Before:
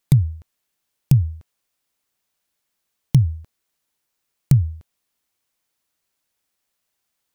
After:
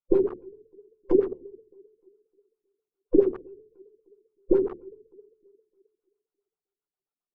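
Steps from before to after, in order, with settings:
frequency inversion band by band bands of 500 Hz
Butterworth band-reject 1,800 Hz, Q 2.5
on a send: bucket-brigade delay 305 ms, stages 4,096, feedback 34%, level −11.5 dB
on the sum: downward compressor 1.5 to 1, threshold −43 dBFS, peak gain reduction 12 dB
noise reduction from a noise print of the clip's start 21 dB
rectangular room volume 47 cubic metres, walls mixed, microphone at 0.84 metres
in parallel at −5 dB: bit reduction 6 bits
on the sum: auto-filter low-pass sine 7.5 Hz 260–1,600 Hz
level −1.5 dB

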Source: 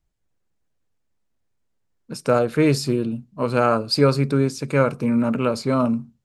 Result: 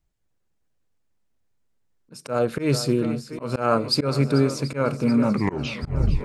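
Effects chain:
turntable brake at the end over 1.01 s
feedback echo with a long and a short gap by turns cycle 731 ms, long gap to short 1.5 to 1, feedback 57%, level −16 dB
volume swells 163 ms

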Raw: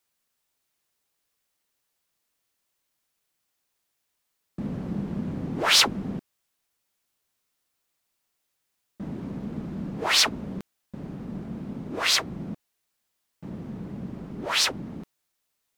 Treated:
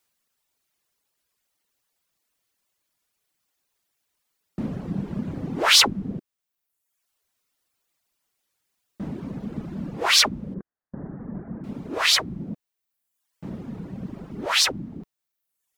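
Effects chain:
0:10.54–0:11.64: Chebyshev low-pass filter 1,800 Hz, order 4
reverb reduction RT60 0.99 s
wow of a warped record 33 1/3 rpm, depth 100 cents
level +3.5 dB

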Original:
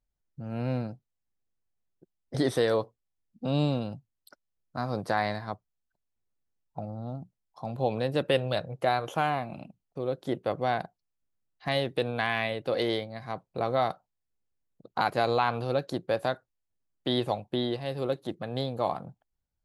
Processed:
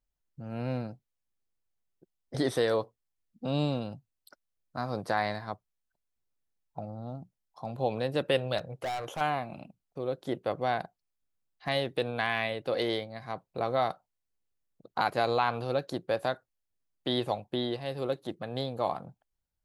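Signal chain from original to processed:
parametric band 130 Hz −2.5 dB 2.8 octaves
0:08.58–0:09.21: hard clipping −29.5 dBFS, distortion −17 dB
level −1 dB

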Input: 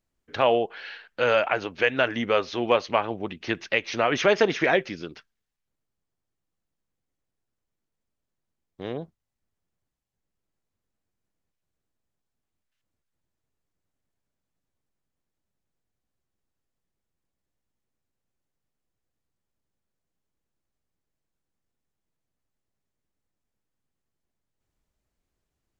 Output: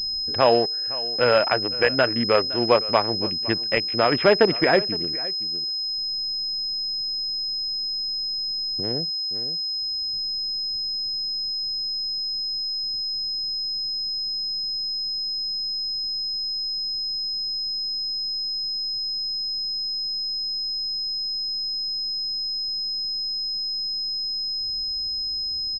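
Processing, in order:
adaptive Wiener filter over 41 samples
on a send: single-tap delay 514 ms −18.5 dB
on the sum: upward compression, threshold −34 dBFS
low-shelf EQ 95 Hz +5.5 dB
switching amplifier with a slow clock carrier 5,100 Hz
level +3.5 dB

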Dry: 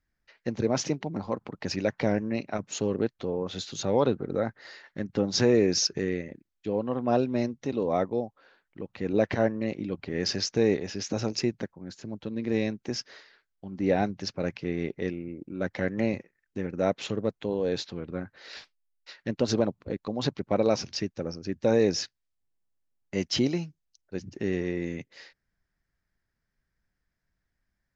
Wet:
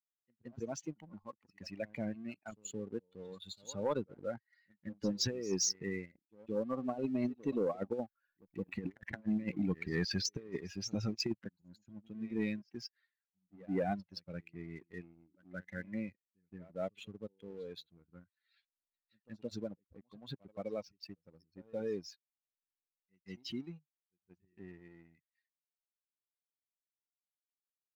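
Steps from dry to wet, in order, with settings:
spectral dynamics exaggerated over time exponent 2
source passing by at 0:08.88, 9 m/s, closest 4.1 metres
compressor whose output falls as the input rises −46 dBFS, ratio −0.5
echo ahead of the sound 172 ms −22 dB
leveller curve on the samples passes 1
level +7.5 dB

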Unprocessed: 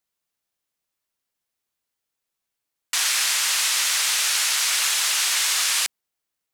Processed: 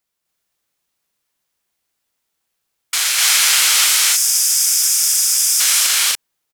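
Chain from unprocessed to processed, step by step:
gain on a spectral selection 0:03.87–0:05.60, 220–4,300 Hz −16 dB
formants moved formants +2 semitones
loudspeakers that aren't time-aligned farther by 86 metres −1 dB, 99 metres −1 dB
level +4.5 dB

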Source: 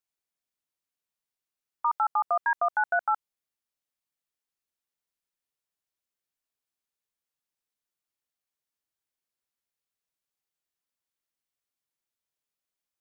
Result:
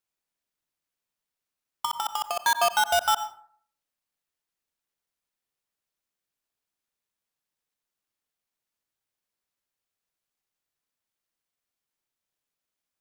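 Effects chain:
each half-wave held at its own peak
0:01.85–0:02.47: compressor whose output falls as the input rises −26 dBFS, ratio −0.5
dense smooth reverb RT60 0.53 s, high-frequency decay 0.5×, pre-delay 80 ms, DRR 12 dB

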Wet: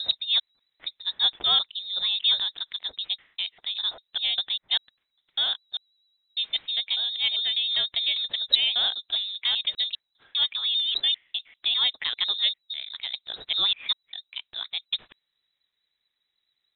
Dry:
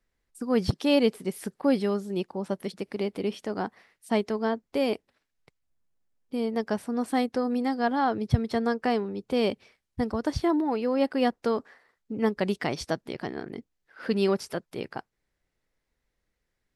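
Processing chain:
slices reordered back to front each 199 ms, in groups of 4
voice inversion scrambler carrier 3,900 Hz
pitch vibrato 9.3 Hz 29 cents

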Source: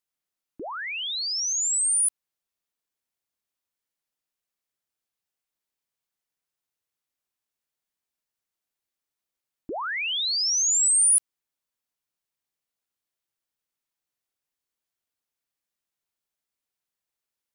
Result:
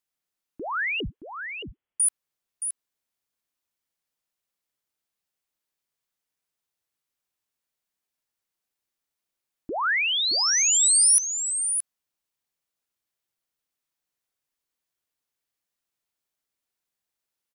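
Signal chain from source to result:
0:01.00–0:02.00: voice inversion scrambler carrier 3,400 Hz
dynamic equaliser 1,600 Hz, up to +6 dB, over −44 dBFS, Q 0.99
single-tap delay 622 ms −8 dB
level +1 dB

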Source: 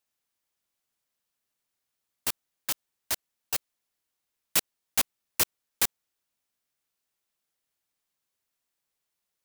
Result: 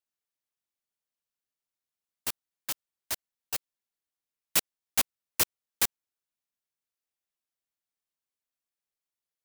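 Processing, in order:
expander for the loud parts 1.5 to 1, over −41 dBFS

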